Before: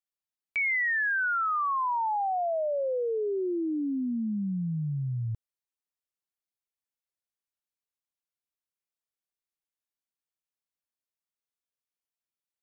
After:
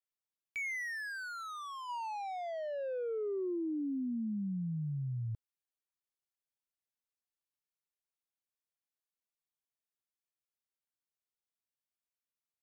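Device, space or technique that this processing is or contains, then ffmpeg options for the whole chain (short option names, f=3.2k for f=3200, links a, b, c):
one-band saturation: -filter_complex "[0:a]acrossover=split=500|2400[a][b][c];[b]asoftclip=type=tanh:threshold=-39.5dB[d];[a][d][c]amix=inputs=3:normalize=0,asplit=3[e][f][g];[e]afade=t=out:st=1.88:d=0.02[h];[f]equalizer=f=1k:t=o:w=0.72:g=5,afade=t=in:st=1.88:d=0.02,afade=t=out:st=3.55:d=0.02[i];[g]afade=t=in:st=3.55:d=0.02[j];[h][i][j]amix=inputs=3:normalize=0,volume=-6dB"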